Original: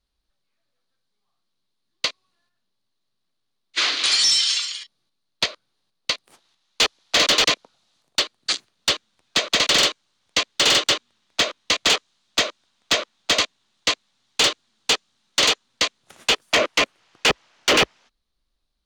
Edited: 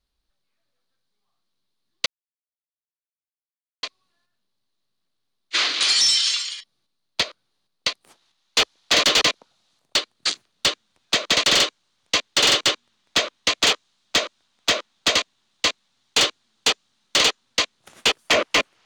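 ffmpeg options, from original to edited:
-filter_complex "[0:a]asplit=2[s0][s1];[s0]atrim=end=2.06,asetpts=PTS-STARTPTS,afade=t=out:st=2.056:d=0.004:c=hsin,apad=pad_dur=1.77[s2];[s1]atrim=start=2.06,asetpts=PTS-STARTPTS,afade=t=in:d=0.004:c=hsin[s3];[s2][s3]concat=n=2:v=0:a=1"

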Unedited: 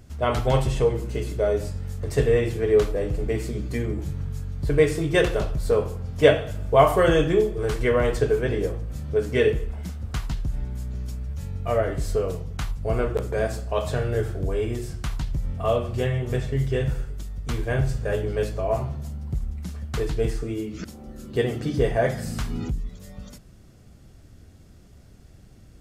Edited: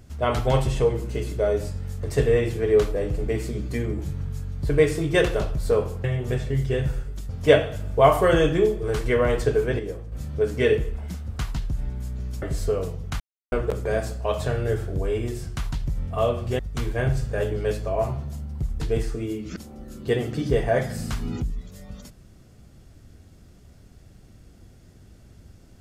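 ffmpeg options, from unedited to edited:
-filter_complex "[0:a]asplit=10[s0][s1][s2][s3][s4][s5][s6][s7][s8][s9];[s0]atrim=end=6.042[s10];[s1]atrim=start=16.058:end=17.312[s11];[s2]atrim=start=6.038:end=8.542[s12];[s3]atrim=start=8.538:end=8.872,asetpts=PTS-STARTPTS,volume=0.473[s13];[s4]atrim=start=8.868:end=11.172[s14];[s5]atrim=start=11.888:end=12.67,asetpts=PTS-STARTPTS,afade=t=out:st=0.778:d=0.004:c=hsin[s15];[s6]atrim=start=12.67:end=12.99,asetpts=PTS-STARTPTS,volume=0[s16];[s7]atrim=start=12.99:end=16.062,asetpts=PTS-STARTPTS,afade=t=in:d=0.004:c=hsin[s17];[s8]atrim=start=17.308:end=19.522[s18];[s9]atrim=start=20.078[s19];[s10][s11]acrossfade=d=0.004:c1=hsin:c2=hsin[s20];[s20][s12]acrossfade=d=0.004:c1=hsin:c2=hsin[s21];[s21][s13]acrossfade=d=0.004:c1=hsin:c2=hsin[s22];[s22][s14]acrossfade=d=0.004:c1=hsin:c2=hsin[s23];[s15][s16][s17]concat=n=3:v=0:a=1[s24];[s23][s24]acrossfade=d=0.004:c1=hsin:c2=hsin[s25];[s25][s18]acrossfade=d=0.004:c1=hsin:c2=hsin[s26];[s26][s19]acrossfade=d=0.004:c1=hsin:c2=hsin"

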